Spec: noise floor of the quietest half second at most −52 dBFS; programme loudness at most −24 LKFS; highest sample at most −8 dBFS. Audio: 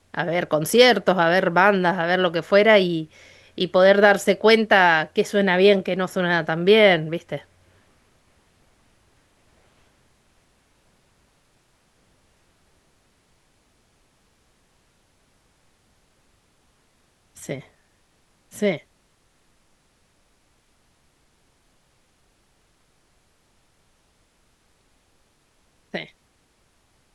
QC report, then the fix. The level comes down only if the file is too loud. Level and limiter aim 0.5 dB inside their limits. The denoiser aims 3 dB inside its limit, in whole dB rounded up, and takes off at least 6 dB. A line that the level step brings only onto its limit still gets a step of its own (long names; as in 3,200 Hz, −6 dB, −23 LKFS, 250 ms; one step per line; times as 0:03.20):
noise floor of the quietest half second −64 dBFS: in spec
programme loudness −18.0 LKFS: out of spec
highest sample −2.0 dBFS: out of spec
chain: level −6.5 dB